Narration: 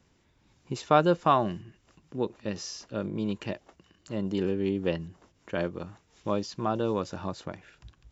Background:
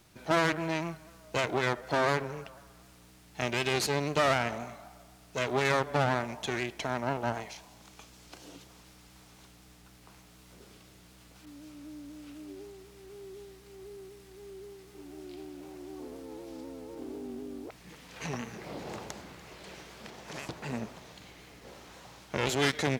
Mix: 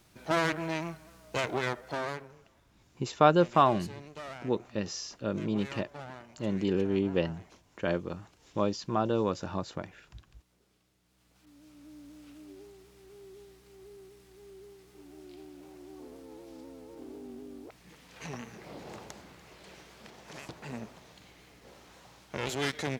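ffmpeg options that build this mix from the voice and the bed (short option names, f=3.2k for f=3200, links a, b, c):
-filter_complex "[0:a]adelay=2300,volume=0dB[a];[1:a]volume=11dB,afade=t=out:st=1.53:d=0.82:silence=0.16788,afade=t=in:st=11.03:d=1:silence=0.237137[b];[a][b]amix=inputs=2:normalize=0"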